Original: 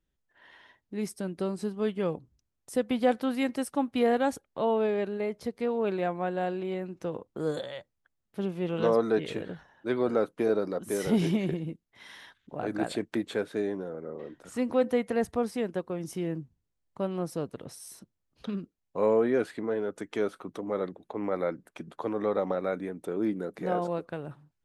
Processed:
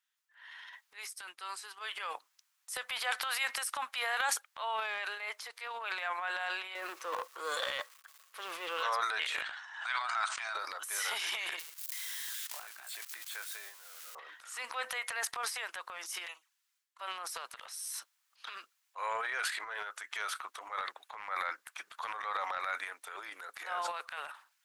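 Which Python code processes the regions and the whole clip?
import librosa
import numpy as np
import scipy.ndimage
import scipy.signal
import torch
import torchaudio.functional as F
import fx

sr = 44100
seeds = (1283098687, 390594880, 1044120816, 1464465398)

y = fx.chain(x, sr, fx.peak_eq(hz=610.0, db=-12.0, octaves=0.22),
    fx.upward_expand(threshold_db=-52.0, expansion=1.5), at=(1.03, 1.81))
y = fx.chain(y, sr, fx.law_mismatch(coded='mu'),
    fx.low_shelf(hz=380.0, db=6.0),
    fx.small_body(hz=(340.0, 490.0, 1100.0), ring_ms=35, db=12), at=(6.75, 8.83))
y = fx.chain(y, sr, fx.brickwall_bandpass(low_hz=620.0, high_hz=9200.0),
    fx.pre_swell(db_per_s=75.0), at=(9.41, 10.55))
y = fx.chain(y, sr, fx.crossing_spikes(level_db=-31.5),
    fx.level_steps(step_db=23), at=(11.59, 14.15))
y = fx.chain(y, sr, fx.highpass(hz=1100.0, slope=12),
    fx.env_flanger(rest_ms=8.9, full_db=-49.0), at=(16.26, 17.01))
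y = scipy.signal.sosfilt(scipy.signal.butter(4, 1100.0, 'highpass', fs=sr, output='sos'), y)
y = fx.transient(y, sr, attack_db=-4, sustain_db=11)
y = y * 10.0 ** (5.5 / 20.0)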